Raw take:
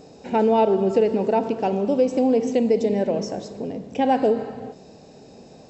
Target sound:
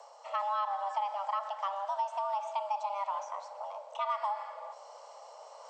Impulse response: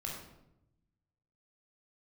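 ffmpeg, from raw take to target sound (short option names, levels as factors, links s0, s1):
-filter_complex "[0:a]acrossover=split=460|3800[s0][s1][s2];[s0]acompressor=threshold=0.02:ratio=4[s3];[s1]acompressor=threshold=0.0794:ratio=4[s4];[s2]acompressor=threshold=0.00178:ratio=4[s5];[s3][s4][s5]amix=inputs=3:normalize=0,afreqshift=400,areverse,acompressor=mode=upward:threshold=0.0178:ratio=2.5,areverse,volume=0.376"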